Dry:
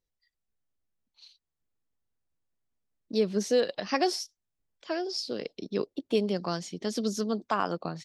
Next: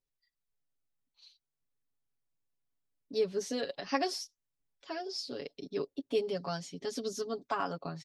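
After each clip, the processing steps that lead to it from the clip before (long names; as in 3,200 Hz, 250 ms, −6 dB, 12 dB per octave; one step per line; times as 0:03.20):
comb filter 7.2 ms, depth 90%
level −7.5 dB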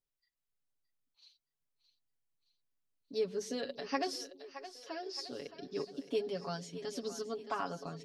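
echo with a time of its own for lows and highs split 390 Hz, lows 139 ms, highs 619 ms, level −12 dB
level −3.5 dB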